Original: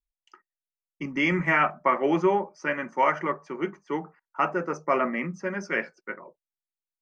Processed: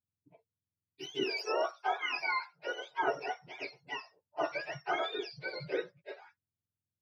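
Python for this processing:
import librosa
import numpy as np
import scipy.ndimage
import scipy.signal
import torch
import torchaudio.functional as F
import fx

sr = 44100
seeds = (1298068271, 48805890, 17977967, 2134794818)

y = fx.octave_mirror(x, sr, pivot_hz=920.0)
y = fx.highpass(y, sr, hz=540.0, slope=12, at=(1.23, 3.03))
y = F.gain(torch.from_numpy(y), -6.5).numpy()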